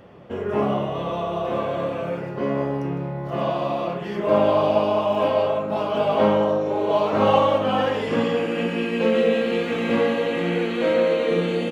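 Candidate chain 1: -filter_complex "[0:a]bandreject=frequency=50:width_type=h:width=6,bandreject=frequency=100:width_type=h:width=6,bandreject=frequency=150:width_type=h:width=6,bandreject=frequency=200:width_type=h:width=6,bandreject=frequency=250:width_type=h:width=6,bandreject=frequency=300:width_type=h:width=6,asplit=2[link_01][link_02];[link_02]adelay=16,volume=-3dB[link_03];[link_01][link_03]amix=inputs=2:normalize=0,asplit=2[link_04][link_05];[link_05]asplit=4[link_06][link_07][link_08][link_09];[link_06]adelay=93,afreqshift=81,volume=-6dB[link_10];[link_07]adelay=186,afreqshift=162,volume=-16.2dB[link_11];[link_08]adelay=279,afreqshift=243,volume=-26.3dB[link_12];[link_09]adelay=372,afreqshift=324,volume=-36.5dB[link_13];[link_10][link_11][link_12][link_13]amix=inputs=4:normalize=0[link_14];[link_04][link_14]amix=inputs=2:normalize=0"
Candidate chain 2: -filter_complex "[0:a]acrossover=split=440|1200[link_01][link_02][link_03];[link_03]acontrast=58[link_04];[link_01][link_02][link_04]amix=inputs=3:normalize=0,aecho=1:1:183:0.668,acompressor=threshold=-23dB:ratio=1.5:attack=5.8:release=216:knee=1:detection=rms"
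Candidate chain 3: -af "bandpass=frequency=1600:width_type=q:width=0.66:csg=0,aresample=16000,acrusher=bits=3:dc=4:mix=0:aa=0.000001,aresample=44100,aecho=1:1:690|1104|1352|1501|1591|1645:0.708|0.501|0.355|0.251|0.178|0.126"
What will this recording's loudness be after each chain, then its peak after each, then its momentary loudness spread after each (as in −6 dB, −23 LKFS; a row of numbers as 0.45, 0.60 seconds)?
−20.0, −23.0, −28.5 LKFS; −4.0, −7.0, −3.0 dBFS; 8, 5, 7 LU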